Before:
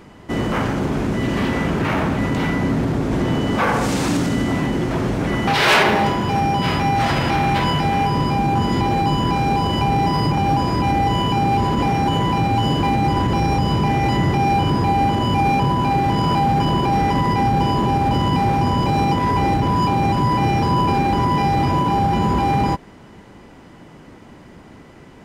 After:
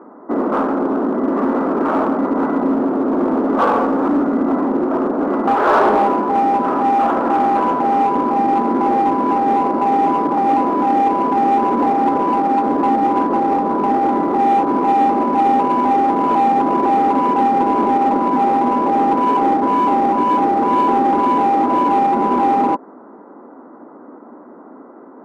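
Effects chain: elliptic band-pass 250–1300 Hz, stop band 40 dB; in parallel at -4 dB: hard clip -21 dBFS, distortion -10 dB; on the sum: gain +2.5 dB

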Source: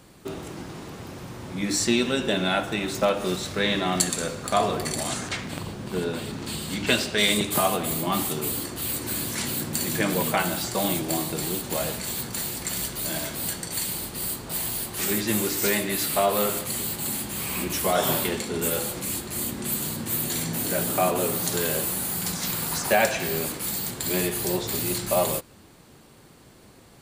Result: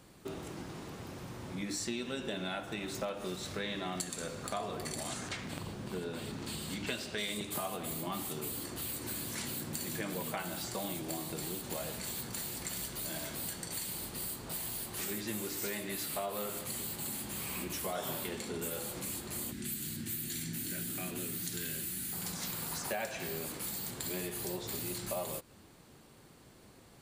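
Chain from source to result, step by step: 19.52–22.13 band shelf 730 Hz -15 dB; compressor 3:1, threshold -30 dBFS, peak gain reduction 11 dB; gain -6.5 dB

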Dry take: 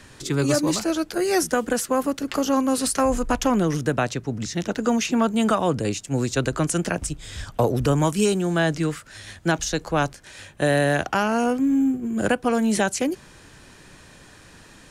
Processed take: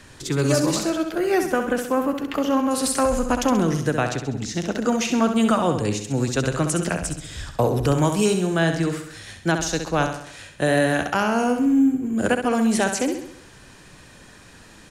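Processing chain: 0.88–2.71 band shelf 6900 Hz -10 dB; on a send: feedback echo 66 ms, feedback 51%, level -7.5 dB

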